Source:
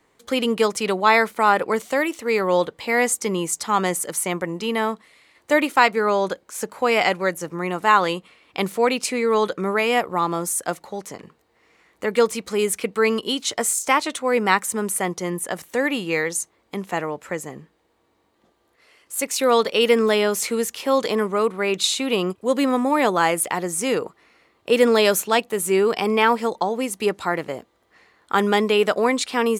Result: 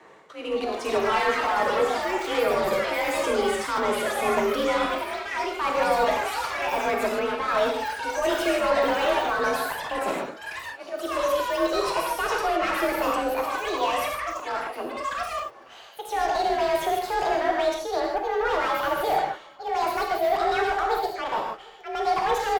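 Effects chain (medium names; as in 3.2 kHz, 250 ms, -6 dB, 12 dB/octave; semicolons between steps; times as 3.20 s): gliding tape speed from 94% -> 168%; reverse; compression 4:1, threshold -31 dBFS, peak gain reduction 18 dB; reverse; slow attack 319 ms; frequency shift +40 Hz; overdrive pedal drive 23 dB, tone 1 kHz, clips at -16 dBFS; echo from a far wall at 130 m, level -24 dB; gated-style reverb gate 180 ms flat, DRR -0.5 dB; ever faster or slower copies 319 ms, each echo +7 st, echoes 3, each echo -6 dB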